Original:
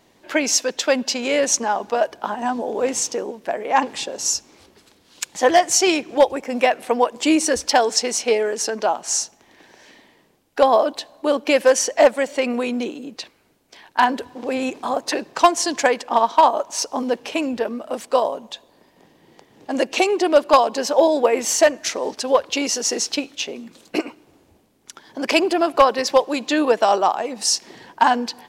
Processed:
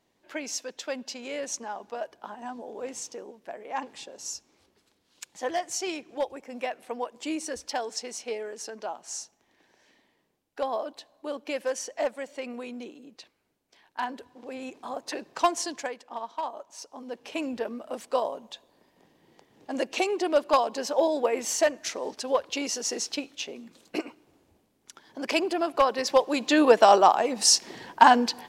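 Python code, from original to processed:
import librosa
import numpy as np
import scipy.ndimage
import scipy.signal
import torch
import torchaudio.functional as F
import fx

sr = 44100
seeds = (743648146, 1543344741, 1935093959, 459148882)

y = fx.gain(x, sr, db=fx.line((14.57, -15.0), (15.58, -8.5), (15.96, -19.0), (16.99, -19.0), (17.4, -8.5), (25.8, -8.5), (26.75, 0.0)))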